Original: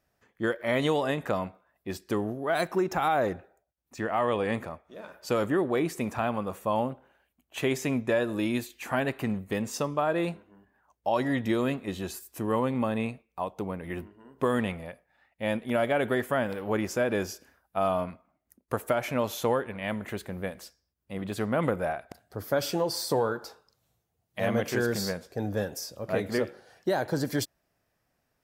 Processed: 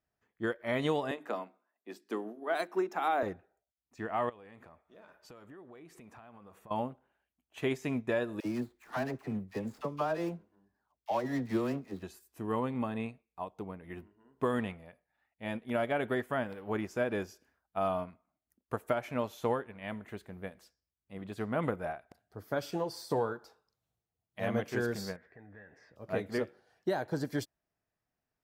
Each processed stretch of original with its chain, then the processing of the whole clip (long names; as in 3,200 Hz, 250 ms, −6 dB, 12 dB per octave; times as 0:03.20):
0:01.11–0:03.23: Butterworth high-pass 220 Hz + mains-hum notches 50/100/150/200/250/300/350/400 Hz
0:04.29–0:06.71: parametric band 1,400 Hz +3 dB 2.9 octaves + downward compressor, threshold −38 dBFS
0:08.40–0:12.03: running median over 15 samples + high-shelf EQ 7,900 Hz +8 dB + all-pass dispersion lows, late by 53 ms, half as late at 650 Hz
0:25.16–0:25.96: low-pass with resonance 1,900 Hz, resonance Q 9.9 + downward compressor 2.5 to 1, threshold −43 dBFS
whole clip: high-shelf EQ 4,800 Hz −5.5 dB; notch filter 540 Hz, Q 12; expander for the loud parts 1.5 to 1, over −40 dBFS; level −3 dB